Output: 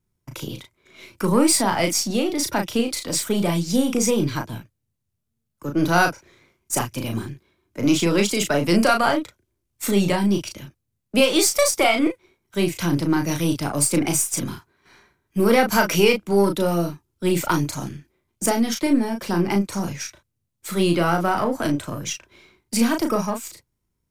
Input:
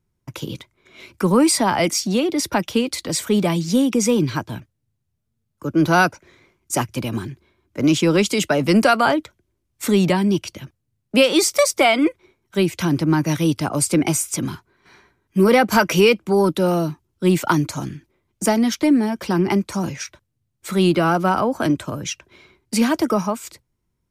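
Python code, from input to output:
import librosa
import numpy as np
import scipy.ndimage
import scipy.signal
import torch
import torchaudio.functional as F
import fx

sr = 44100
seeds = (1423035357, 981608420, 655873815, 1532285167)

y = np.where(x < 0.0, 10.0 ** (-3.0 / 20.0) * x, x)
y = fx.high_shelf(y, sr, hz=6300.0, db=6.0)
y = fx.doubler(y, sr, ms=35.0, db=-5)
y = F.gain(torch.from_numpy(y), -2.5).numpy()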